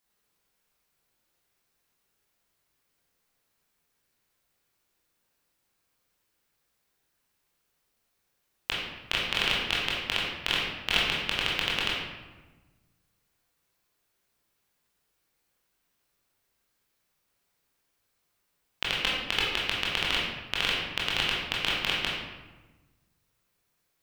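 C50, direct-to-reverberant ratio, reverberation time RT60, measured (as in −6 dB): 0.0 dB, −5.5 dB, 1.2 s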